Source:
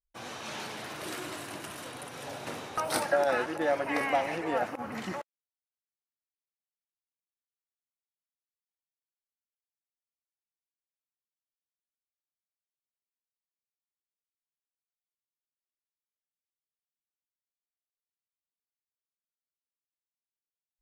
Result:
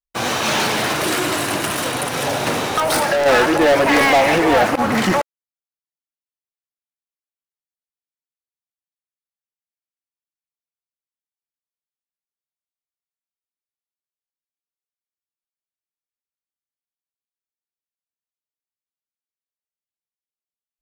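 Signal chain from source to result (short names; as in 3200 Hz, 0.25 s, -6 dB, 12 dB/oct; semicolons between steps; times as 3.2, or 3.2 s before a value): sample leveller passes 5; 0.91–3.26 compressor, threshold -19 dBFS, peak gain reduction 5 dB; gain +3 dB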